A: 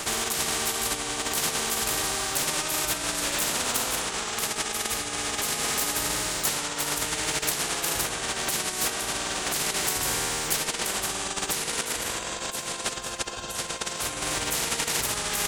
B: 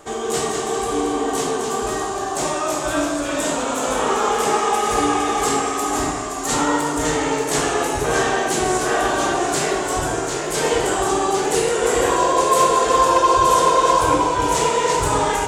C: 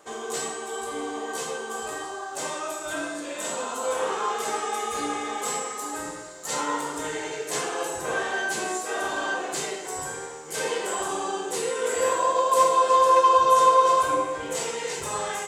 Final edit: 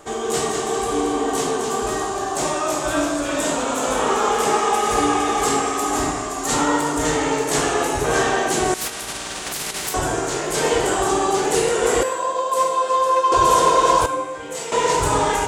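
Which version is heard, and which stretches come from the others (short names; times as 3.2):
B
8.74–9.94 from A
12.03–13.32 from C
14.06–14.72 from C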